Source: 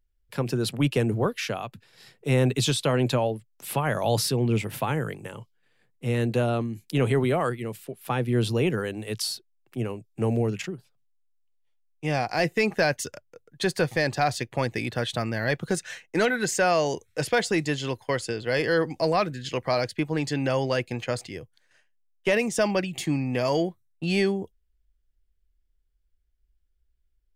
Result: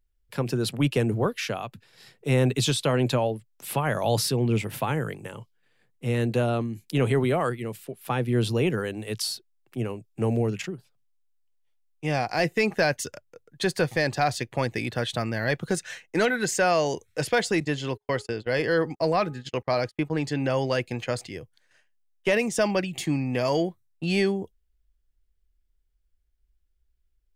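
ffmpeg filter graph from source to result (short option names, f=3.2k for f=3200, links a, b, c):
-filter_complex "[0:a]asettb=1/sr,asplit=3[a][b][c];[a]atrim=end=17.604[d];[b]atrim=start=17.6:end=20.57,asetpts=PTS-STARTPTS,afade=t=in:d=0.004:c=qsin,afade=t=out:st=2.966:d=0.004:c=qsin,equalizer=f=13k:t=o:w=2.7:g=-4,bandreject=f=416.5:t=h:w=4,bandreject=f=833:t=h:w=4,bandreject=f=1.2495k:t=h:w=4,agate=range=-35dB:threshold=-37dB:ratio=16:release=100:detection=peak[e];[c]atrim=start=20.566[f];[d][e]acrossfade=d=0.004:c1=hsin:c2=qsin[g];[g][f]acrossfade=d=0.004:c1=qsin:c2=hsin"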